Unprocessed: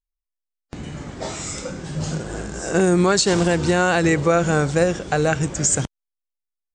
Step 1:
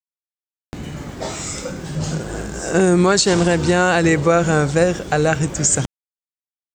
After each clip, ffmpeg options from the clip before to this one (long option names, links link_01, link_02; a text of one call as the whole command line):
ffmpeg -i in.wav -af "aeval=exprs='val(0)*gte(abs(val(0)),0.00531)':channel_layout=same,volume=2.5dB" out.wav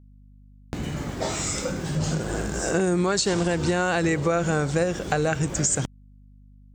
ffmpeg -i in.wav -af "acompressor=threshold=-22dB:ratio=3,aeval=exprs='val(0)+0.00355*(sin(2*PI*50*n/s)+sin(2*PI*2*50*n/s)/2+sin(2*PI*3*50*n/s)/3+sin(2*PI*4*50*n/s)/4+sin(2*PI*5*50*n/s)/5)':channel_layout=same" out.wav